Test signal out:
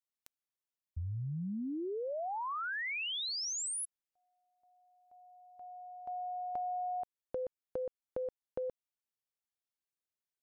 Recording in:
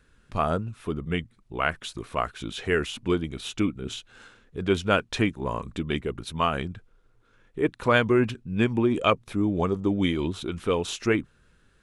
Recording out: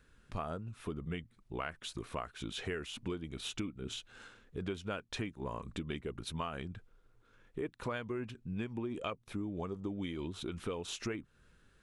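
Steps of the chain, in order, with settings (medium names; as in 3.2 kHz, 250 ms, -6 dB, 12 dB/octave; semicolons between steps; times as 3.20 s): compression 6:1, threshold -32 dBFS; trim -4 dB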